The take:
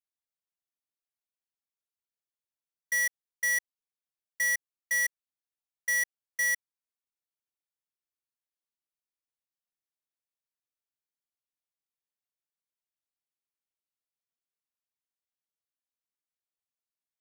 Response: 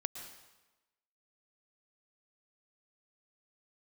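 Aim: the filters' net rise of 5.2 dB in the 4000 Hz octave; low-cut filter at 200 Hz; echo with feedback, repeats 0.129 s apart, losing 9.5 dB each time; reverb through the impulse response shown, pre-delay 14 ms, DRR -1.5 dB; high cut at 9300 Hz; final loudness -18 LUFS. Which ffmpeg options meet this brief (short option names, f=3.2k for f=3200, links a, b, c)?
-filter_complex "[0:a]highpass=200,lowpass=9.3k,equalizer=f=4k:t=o:g=6.5,aecho=1:1:129|258|387|516:0.335|0.111|0.0365|0.012,asplit=2[a][b];[1:a]atrim=start_sample=2205,adelay=14[c];[b][c]afir=irnorm=-1:irlink=0,volume=1.5dB[d];[a][d]amix=inputs=2:normalize=0,volume=4.5dB"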